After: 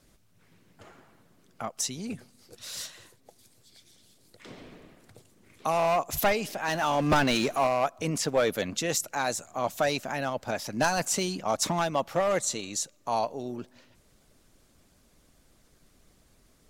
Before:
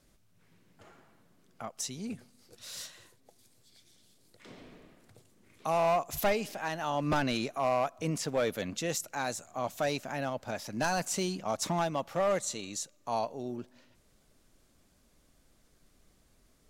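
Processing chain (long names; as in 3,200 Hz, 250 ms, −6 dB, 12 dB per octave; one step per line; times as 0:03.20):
harmonic and percussive parts rebalanced harmonic −5 dB
0:06.68–0:07.67: power curve on the samples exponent 0.7
level +6.5 dB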